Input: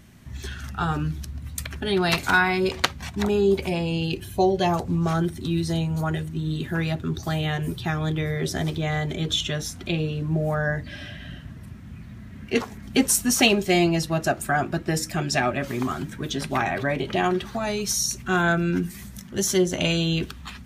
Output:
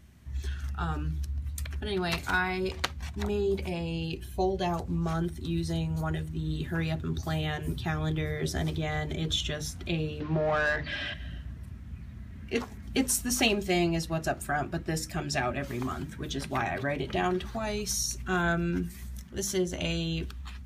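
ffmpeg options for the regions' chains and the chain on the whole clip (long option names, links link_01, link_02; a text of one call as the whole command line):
ffmpeg -i in.wav -filter_complex "[0:a]asettb=1/sr,asplit=3[link_01][link_02][link_03];[link_01]atrim=end=10.204[link_04];[link_02]atrim=start=10.2:end=11.14,asetpts=PTS-STARTPTS,afade=type=in:duration=0.004:curve=qsin,afade=type=out:start_time=0.936:duration=0.004:curve=qsin,lowpass=frequency=5000:width=0.5412,lowpass=frequency=5000:width=1.3066,highshelf=frequency=2500:gain=6.5,asplit=2[link_05][link_06];[link_06]highpass=frequency=720:poles=1,volume=18dB,asoftclip=type=tanh:threshold=-13dB[link_07];[link_05][link_07]amix=inputs=2:normalize=0,lowpass=frequency=2600:poles=1,volume=-6dB[link_08];[link_03]atrim=start=11.136[link_09];[link_04][link_08]acrossfade=duration=0.004:curve1=hsin:curve2=qsin[link_10];[link_10][link_09]acrossfade=duration=0.004:curve1=qsin:curve2=hsin,equalizer=frequency=62:width=1.6:gain=13,bandreject=frequency=50:width_type=h:width=6,bandreject=frequency=100:width_type=h:width=6,bandreject=frequency=150:width_type=h:width=6,bandreject=frequency=200:width_type=h:width=6,bandreject=frequency=250:width_type=h:width=6,dynaudnorm=framelen=620:gausssize=9:maxgain=3.5dB,volume=-8.5dB" out.wav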